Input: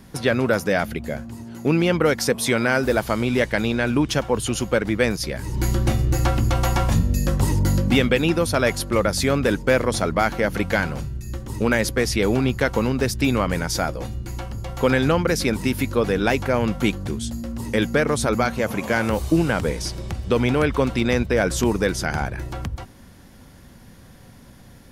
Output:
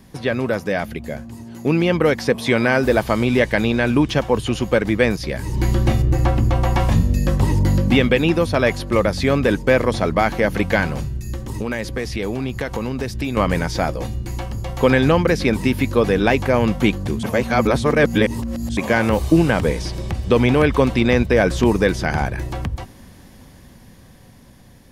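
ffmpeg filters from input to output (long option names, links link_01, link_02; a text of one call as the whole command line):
ffmpeg -i in.wav -filter_complex "[0:a]asettb=1/sr,asplit=3[link_01][link_02][link_03];[link_01]atrim=end=6.024[link_04];[link_02]atrim=start=6.02:end=6.76,asetpts=PTS-STARTPTS,afade=type=in:duration=0.004:curve=qsin,afade=type=out:start_time=0.736:duration=0.004:curve=qsin,highshelf=frequency=2600:gain=-10[link_05];[link_03]atrim=start=6.756[link_06];[link_04][link_05]acrossfade=duration=0.004:curve1=hsin:curve2=qsin[link_07];[link_07][link_06]acrossfade=duration=0.004:curve1=qsin:curve2=hsin,asettb=1/sr,asplit=3[link_08][link_09][link_10];[link_08]atrim=end=11.334[link_11];[link_09]atrim=start=11.33:end=13.37,asetpts=PTS-STARTPTS,afade=type=in:duration=0.004:curve=qsin,afade=type=out:start_time=2.036:duration=0.004:curve=qsin,acompressor=threshold=-26dB:ratio=3:attack=3.2:release=140:knee=1:detection=peak[link_12];[link_10]atrim=start=13.366[link_13];[link_11][link_12]acrossfade=duration=0.004:curve1=hsin:curve2=qsin[link_14];[link_14][link_13]acrossfade=duration=0.004:curve1=qsin:curve2=hsin,asplit=3[link_15][link_16][link_17];[link_15]atrim=end=17.232[link_18];[link_16]atrim=start=17.228:end=18.772,asetpts=PTS-STARTPTS,areverse[link_19];[link_17]atrim=start=18.768[link_20];[link_18][link_19]acrossfade=duration=0.004:curve1=hsin:curve2=hsin[link_21];[link_21][link_20]acrossfade=duration=0.004:curve1=hsin:curve2=hsin,acrossover=split=4100[link_22][link_23];[link_23]acompressor=threshold=-42dB:ratio=4:attack=1:release=60[link_24];[link_22][link_24]amix=inputs=2:normalize=0,bandreject=frequency=1400:width=10,dynaudnorm=framelen=440:gausssize=9:maxgain=11.5dB,volume=-1dB" out.wav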